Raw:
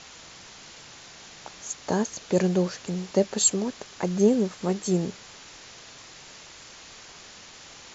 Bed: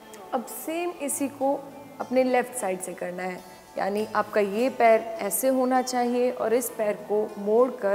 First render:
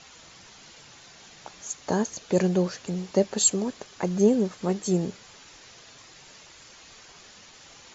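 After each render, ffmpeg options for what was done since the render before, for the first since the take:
ffmpeg -i in.wav -af "afftdn=noise_reduction=6:noise_floor=-47" out.wav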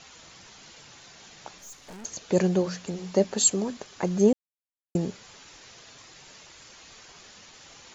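ffmpeg -i in.wav -filter_complex "[0:a]asettb=1/sr,asplit=3[link_01][link_02][link_03];[link_01]atrim=end=1.584[link_04];[link_02]atrim=start=1.58:end=2.05,asetpts=PTS-STARTPTS,afade=type=in:duration=0.004:curve=qsin,afade=type=out:start_time=0.466:duration=0.004:curve=qsin,aeval=exprs='(tanh(126*val(0)+0.5)-tanh(0.5))/126':channel_layout=same[link_05];[link_03]atrim=start=2.046[link_06];[link_04][link_05]acrossfade=duration=0.004:curve1=hsin:curve2=qsin[link_07];[link_07][link_06]acrossfade=duration=0.004:curve1=qsin:curve2=hsin,asettb=1/sr,asplit=3[link_08][link_09][link_10];[link_08]atrim=end=2.584[link_11];[link_09]atrim=start=2.58:end=3.77,asetpts=PTS-STARTPTS,afade=type=in:duration=0.004:curve=qsin,afade=type=out:start_time=1.186:duration=0.004:curve=qsin,bandreject=frequency=60:width_type=h:width=6,bandreject=frequency=120:width_type=h:width=6,bandreject=frequency=180:width_type=h:width=6,bandreject=frequency=240:width_type=h:width=6,bandreject=frequency=300:width_type=h:width=6[link_12];[link_10]atrim=start=3.766[link_13];[link_11][link_12]acrossfade=duration=0.004:curve1=hsin:curve2=qsin[link_14];[link_14][link_13]acrossfade=duration=0.004:curve1=qsin:curve2=hsin,asplit=3[link_15][link_16][link_17];[link_15]atrim=end=4.33,asetpts=PTS-STARTPTS,afade=type=out:start_time=4.326:duration=0.004:curve=hsin[link_18];[link_16]atrim=start=4.33:end=4.95,asetpts=PTS-STARTPTS,volume=0[link_19];[link_17]atrim=start=4.95,asetpts=PTS-STARTPTS,afade=type=in:duration=0.004:curve=hsin[link_20];[link_18][link_19][link_20]concat=n=3:v=0:a=1" out.wav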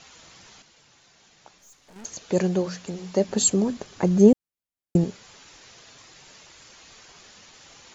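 ffmpeg -i in.wav -filter_complex "[0:a]asettb=1/sr,asplit=3[link_01][link_02][link_03];[link_01]atrim=end=3.284[link_04];[link_02]atrim=start=3.28:end=5.04,asetpts=PTS-STARTPTS,afade=type=in:duration=0.004:curve=qsin,afade=type=out:start_time=1.756:duration=0.004:curve=qsin,lowshelf=frequency=410:gain=9[link_05];[link_03]atrim=start=5.036[link_06];[link_04][link_05]acrossfade=duration=0.004:curve1=hsin:curve2=qsin[link_07];[link_07][link_06]acrossfade=duration=0.004:curve1=qsin:curve2=hsin,asplit=3[link_08][link_09][link_10];[link_08]atrim=end=0.622[link_11];[link_09]atrim=start=0.618:end=1.962,asetpts=PTS-STARTPTS,volume=-8dB[link_12];[link_10]atrim=start=1.958[link_13];[link_11][link_12]acrossfade=duration=0.004:curve1=hsin:curve2=hsin[link_14];[link_14][link_13]acrossfade=duration=0.004:curve1=hsin:curve2=hsin" out.wav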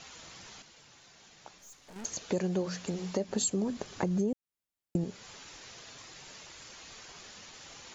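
ffmpeg -i in.wav -af "alimiter=limit=-14dB:level=0:latency=1:release=343,acompressor=threshold=-30dB:ratio=2.5" out.wav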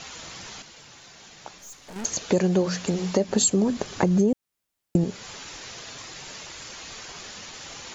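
ffmpeg -i in.wav -af "volume=9.5dB" out.wav

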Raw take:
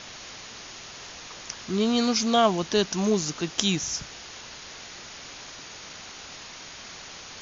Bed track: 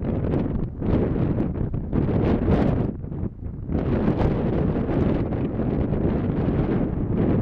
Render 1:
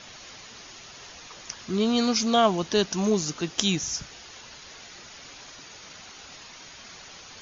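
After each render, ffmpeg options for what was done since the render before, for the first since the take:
ffmpeg -i in.wav -af "afftdn=noise_reduction=6:noise_floor=-43" out.wav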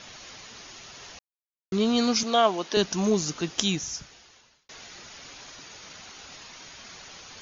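ffmpeg -i in.wav -filter_complex "[0:a]asettb=1/sr,asplit=3[link_01][link_02][link_03];[link_01]atrim=end=2.234[link_04];[link_02]atrim=start=2.23:end=2.77,asetpts=PTS-STARTPTS,afade=type=in:duration=0.004:curve=qsin,afade=type=out:start_time=0.536:duration=0.004:curve=qsin,highpass=330,lowpass=6400[link_05];[link_03]atrim=start=2.766[link_06];[link_04][link_05]acrossfade=duration=0.004:curve1=hsin:curve2=qsin[link_07];[link_07][link_06]acrossfade=duration=0.004:curve1=qsin:curve2=hsin,asplit=4[link_08][link_09][link_10][link_11];[link_08]atrim=end=1.19,asetpts=PTS-STARTPTS,afade=type=out:start_time=1.186:duration=0.004:curve=hsin[link_12];[link_09]atrim=start=1.19:end=1.72,asetpts=PTS-STARTPTS,volume=0[link_13];[link_10]atrim=start=1.72:end=4.69,asetpts=PTS-STARTPTS,afade=type=in:duration=0.004:curve=hsin,afade=type=out:start_time=1.78:duration=1.19[link_14];[link_11]atrim=start=4.69,asetpts=PTS-STARTPTS,afade=type=in:duration=0.004:curve=hsin[link_15];[link_12][link_13][link_14][link_15]concat=n=4:v=0:a=1" out.wav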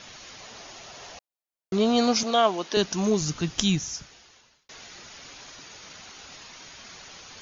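ffmpeg -i in.wav -filter_complex "[0:a]asettb=1/sr,asplit=3[link_01][link_02][link_03];[link_01]atrim=end=0.404[link_04];[link_02]atrim=start=0.4:end=2.31,asetpts=PTS-STARTPTS,afade=type=in:duration=0.004:curve=qsin,afade=type=out:start_time=1.906:duration=0.004:curve=qsin,equalizer=frequency=670:width=1.5:gain=8[link_05];[link_03]atrim=start=2.306[link_06];[link_04][link_05]acrossfade=duration=0.004:curve1=hsin:curve2=qsin[link_07];[link_07][link_06]acrossfade=duration=0.004:curve1=qsin:curve2=hsin,asplit=3[link_08][link_09][link_10];[link_08]afade=type=out:start_time=3.2:duration=0.02[link_11];[link_09]asubboost=boost=4.5:cutoff=180,afade=type=in:start_time=3.2:duration=0.02,afade=type=out:start_time=3.81:duration=0.02[link_12];[link_10]afade=type=in:start_time=3.81:duration=0.02[link_13];[link_11][link_12][link_13]amix=inputs=3:normalize=0" out.wav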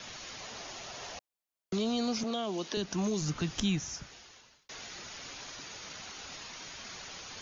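ffmpeg -i in.wav -filter_complex "[0:a]acrossover=split=460|2700[link_01][link_02][link_03];[link_01]acompressor=threshold=-29dB:ratio=4[link_04];[link_02]acompressor=threshold=-36dB:ratio=4[link_05];[link_03]acompressor=threshold=-40dB:ratio=4[link_06];[link_04][link_05][link_06]amix=inputs=3:normalize=0,acrossover=split=210|2700[link_07][link_08][link_09];[link_08]alimiter=level_in=5.5dB:limit=-24dB:level=0:latency=1:release=22,volume=-5.5dB[link_10];[link_07][link_10][link_09]amix=inputs=3:normalize=0" out.wav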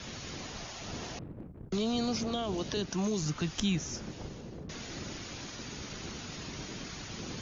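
ffmpeg -i in.wav -i bed.wav -filter_complex "[1:a]volume=-22dB[link_01];[0:a][link_01]amix=inputs=2:normalize=0" out.wav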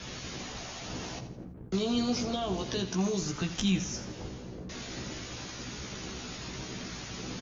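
ffmpeg -i in.wav -filter_complex "[0:a]asplit=2[link_01][link_02];[link_02]adelay=16,volume=-4dB[link_03];[link_01][link_03]amix=inputs=2:normalize=0,aecho=1:1:83|166|249|332:0.251|0.098|0.0382|0.0149" out.wav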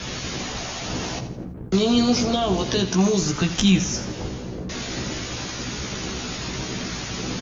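ffmpeg -i in.wav -af "volume=10.5dB" out.wav

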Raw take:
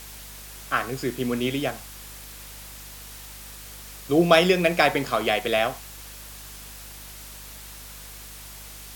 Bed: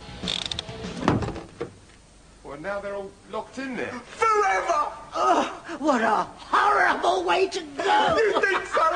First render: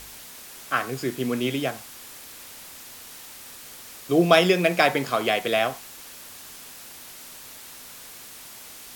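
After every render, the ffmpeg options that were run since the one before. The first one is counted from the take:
ffmpeg -i in.wav -af "bandreject=frequency=50:width_type=h:width=4,bandreject=frequency=100:width_type=h:width=4,bandreject=frequency=150:width_type=h:width=4,bandreject=frequency=200:width_type=h:width=4" out.wav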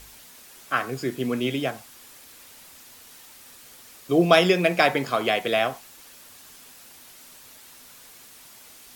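ffmpeg -i in.wav -af "afftdn=noise_reduction=6:noise_floor=-43" out.wav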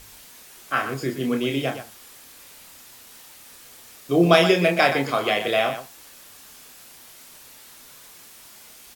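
ffmpeg -i in.wav -af "aecho=1:1:29.15|122.4:0.562|0.316" out.wav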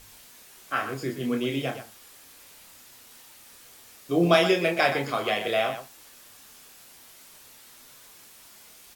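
ffmpeg -i in.wav -af "flanger=delay=8.3:depth=2.4:regen=-57:speed=0.64:shape=sinusoidal" out.wav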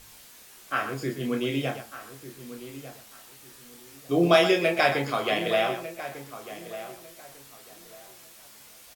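ffmpeg -i in.wav -filter_complex "[0:a]asplit=2[link_01][link_02];[link_02]adelay=14,volume=-11dB[link_03];[link_01][link_03]amix=inputs=2:normalize=0,asplit=2[link_04][link_05];[link_05]adelay=1198,lowpass=frequency=2000:poles=1,volume=-13dB,asplit=2[link_06][link_07];[link_07]adelay=1198,lowpass=frequency=2000:poles=1,volume=0.25,asplit=2[link_08][link_09];[link_09]adelay=1198,lowpass=frequency=2000:poles=1,volume=0.25[link_10];[link_04][link_06][link_08][link_10]amix=inputs=4:normalize=0" out.wav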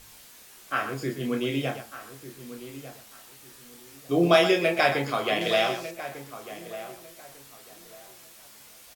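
ffmpeg -i in.wav -filter_complex "[0:a]asettb=1/sr,asplit=3[link_01][link_02][link_03];[link_01]atrim=end=5.414[link_04];[link_02]atrim=start=5.41:end=5.91,asetpts=PTS-STARTPTS,afade=type=in:duration=0.004:curve=qsin,afade=type=out:start_time=0.496:duration=0.004:curve=qsin,equalizer=frequency=5200:width_type=o:width=1.2:gain=9.5[link_05];[link_03]atrim=start=5.906[link_06];[link_04][link_05]acrossfade=duration=0.004:curve1=hsin:curve2=qsin[link_07];[link_07][link_06]acrossfade=duration=0.004:curve1=qsin:curve2=hsin" out.wav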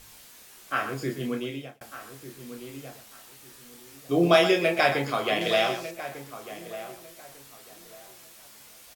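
ffmpeg -i in.wav -filter_complex "[0:a]asplit=2[link_01][link_02];[link_01]atrim=end=1.81,asetpts=PTS-STARTPTS,afade=type=out:start_time=1.19:duration=0.62[link_03];[link_02]atrim=start=1.81,asetpts=PTS-STARTPTS,afade=type=in:duration=0.004:curve=hsin[link_04];[link_03][link_04]concat=n=2:v=0:a=1" out.wav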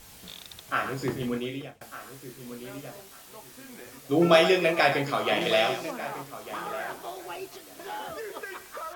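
ffmpeg -i in.wav -i bed.wav -filter_complex "[1:a]volume=-17dB[link_01];[0:a][link_01]amix=inputs=2:normalize=0" out.wav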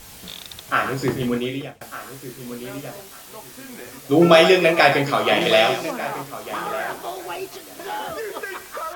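ffmpeg -i in.wav -af "volume=7.5dB,alimiter=limit=-1dB:level=0:latency=1" out.wav

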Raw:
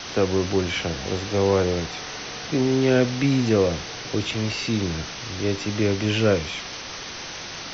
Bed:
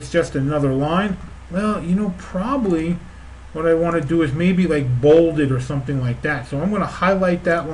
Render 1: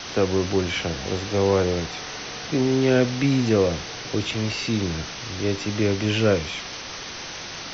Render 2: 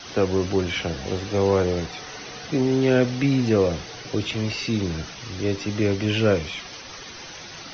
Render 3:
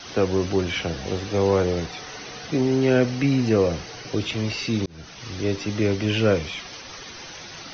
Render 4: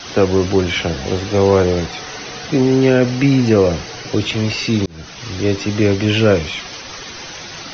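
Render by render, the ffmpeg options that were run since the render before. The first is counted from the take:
ffmpeg -i in.wav -af anull out.wav
ffmpeg -i in.wav -af "afftdn=noise_reduction=9:noise_floor=-35" out.wav
ffmpeg -i in.wav -filter_complex "[0:a]asettb=1/sr,asplit=3[link_01][link_02][link_03];[link_01]atrim=end=2.694[link_04];[link_02]atrim=start=2.69:end=4.12,asetpts=PTS-STARTPTS,afade=type=in:duration=0.004:curve=qsin,afade=type=out:start_time=1.426:duration=0.004:curve=qsin,bandreject=frequency=3500:width=12[link_05];[link_03]atrim=start=4.116[link_06];[link_04][link_05]acrossfade=duration=0.004:curve1=hsin:curve2=qsin[link_07];[link_07][link_06]acrossfade=duration=0.004:curve1=qsin:curve2=hsin,asplit=2[link_08][link_09];[link_08]atrim=end=4.86,asetpts=PTS-STARTPTS,afade=type=out:start_time=4.856:duration=0.004:curve=hsin[link_10];[link_09]atrim=start=4.86,asetpts=PTS-STARTPTS,afade=type=in:duration=0.42[link_11];[link_10][link_11]concat=n=2:v=0:a=1" out.wav
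ffmpeg -i in.wav -af "volume=7.5dB,alimiter=limit=-2dB:level=0:latency=1" out.wav

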